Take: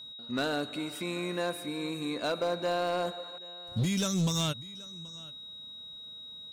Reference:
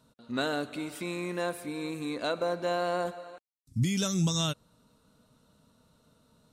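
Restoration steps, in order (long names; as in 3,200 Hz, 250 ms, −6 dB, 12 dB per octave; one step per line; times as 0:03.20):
clipped peaks rebuilt −24 dBFS
notch filter 3,800 Hz, Q 30
echo removal 779 ms −21.5 dB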